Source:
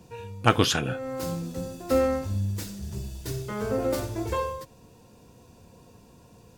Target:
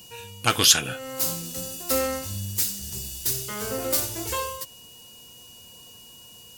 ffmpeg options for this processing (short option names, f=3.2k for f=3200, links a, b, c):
-af "acontrast=84,aeval=exprs='val(0)+0.00398*sin(2*PI*2900*n/s)':c=same,crystalizer=i=9.5:c=0,volume=-12.5dB"